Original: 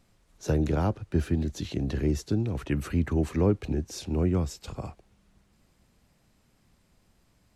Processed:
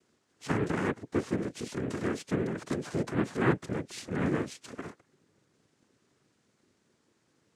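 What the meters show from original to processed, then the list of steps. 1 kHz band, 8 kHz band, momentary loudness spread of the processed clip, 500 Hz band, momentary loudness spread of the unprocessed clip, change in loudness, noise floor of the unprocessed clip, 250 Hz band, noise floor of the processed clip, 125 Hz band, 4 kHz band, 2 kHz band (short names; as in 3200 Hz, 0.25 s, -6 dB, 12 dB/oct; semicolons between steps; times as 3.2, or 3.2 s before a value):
+1.5 dB, -2.5 dB, 12 LU, -2.0 dB, 10 LU, -3.5 dB, -66 dBFS, -3.5 dB, -73 dBFS, -8.0 dB, -2.0 dB, +6.0 dB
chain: noise vocoder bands 3; gain -3 dB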